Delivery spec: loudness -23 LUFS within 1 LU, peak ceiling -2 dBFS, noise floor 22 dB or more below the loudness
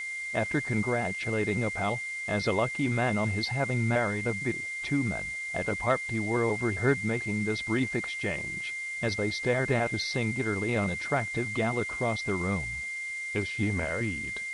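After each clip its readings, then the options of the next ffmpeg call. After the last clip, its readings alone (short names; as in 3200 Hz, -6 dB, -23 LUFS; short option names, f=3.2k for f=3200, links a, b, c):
steady tone 2100 Hz; tone level -33 dBFS; noise floor -36 dBFS; noise floor target -51 dBFS; loudness -29.0 LUFS; peak -13.5 dBFS; loudness target -23.0 LUFS
-> -af "bandreject=f=2.1k:w=30"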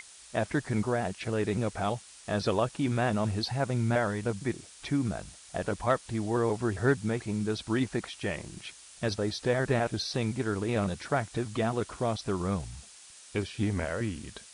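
steady tone none; noise floor -52 dBFS; noise floor target -53 dBFS
-> -af "afftdn=nr=6:nf=-52"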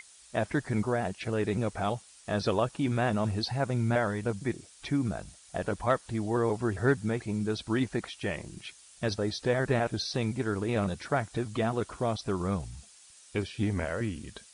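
noise floor -56 dBFS; loudness -31.0 LUFS; peak -14.0 dBFS; loudness target -23.0 LUFS
-> -af "volume=8dB"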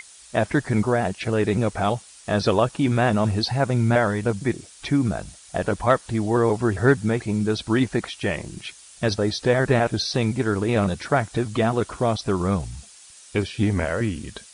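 loudness -23.0 LUFS; peak -6.0 dBFS; noise floor -48 dBFS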